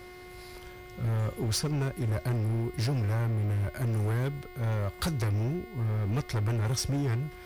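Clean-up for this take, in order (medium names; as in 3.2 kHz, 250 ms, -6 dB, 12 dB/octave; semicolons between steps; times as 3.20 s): clip repair -25 dBFS; de-hum 362.5 Hz, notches 14; band-stop 2.1 kHz, Q 30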